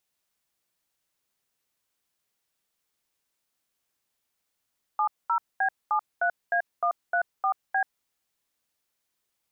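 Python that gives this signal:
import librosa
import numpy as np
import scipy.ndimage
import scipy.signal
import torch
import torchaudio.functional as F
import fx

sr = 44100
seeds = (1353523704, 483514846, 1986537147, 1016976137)

y = fx.dtmf(sr, digits='70B73A134B', tone_ms=85, gap_ms=221, level_db=-24.0)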